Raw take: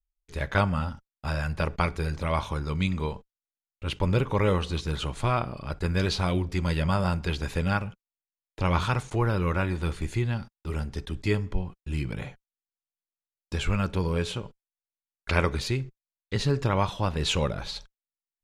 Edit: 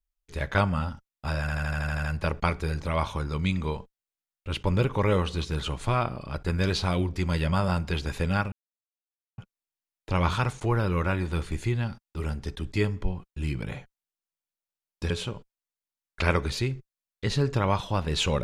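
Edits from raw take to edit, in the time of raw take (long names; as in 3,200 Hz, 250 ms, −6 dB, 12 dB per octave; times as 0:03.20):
0:01.40: stutter 0.08 s, 9 plays
0:07.88: splice in silence 0.86 s
0:13.60–0:14.19: remove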